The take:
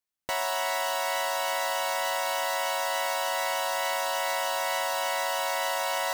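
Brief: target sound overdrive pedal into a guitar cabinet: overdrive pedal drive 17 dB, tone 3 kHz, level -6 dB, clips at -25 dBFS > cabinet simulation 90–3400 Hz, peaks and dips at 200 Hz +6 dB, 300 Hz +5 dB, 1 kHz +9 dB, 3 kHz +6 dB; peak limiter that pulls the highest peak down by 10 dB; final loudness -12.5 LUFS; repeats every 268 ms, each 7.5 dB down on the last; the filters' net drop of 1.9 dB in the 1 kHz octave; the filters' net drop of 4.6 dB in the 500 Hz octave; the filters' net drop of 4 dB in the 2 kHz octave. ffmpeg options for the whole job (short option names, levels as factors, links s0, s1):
-filter_complex "[0:a]equalizer=f=500:t=o:g=-3.5,equalizer=f=1000:t=o:g=-7.5,equalizer=f=2000:t=o:g=-4,alimiter=level_in=1.58:limit=0.0631:level=0:latency=1,volume=0.631,aecho=1:1:268|536|804|1072|1340:0.422|0.177|0.0744|0.0312|0.0131,asplit=2[s0][s1];[s1]highpass=f=720:p=1,volume=7.08,asoftclip=type=tanh:threshold=0.0562[s2];[s0][s2]amix=inputs=2:normalize=0,lowpass=f=3000:p=1,volume=0.501,highpass=90,equalizer=f=200:t=q:w=4:g=6,equalizer=f=300:t=q:w=4:g=5,equalizer=f=1000:t=q:w=4:g=9,equalizer=f=3000:t=q:w=4:g=6,lowpass=f=3400:w=0.5412,lowpass=f=3400:w=1.3066,volume=8.91"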